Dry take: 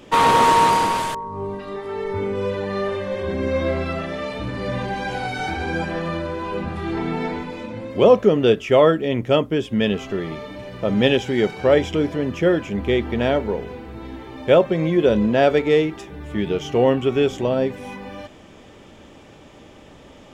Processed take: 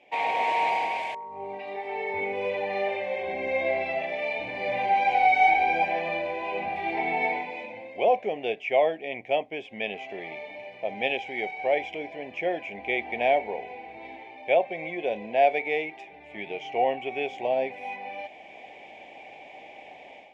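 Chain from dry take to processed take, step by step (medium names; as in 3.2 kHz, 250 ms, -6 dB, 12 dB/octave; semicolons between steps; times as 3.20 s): level rider; two resonant band-passes 1.3 kHz, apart 1.6 oct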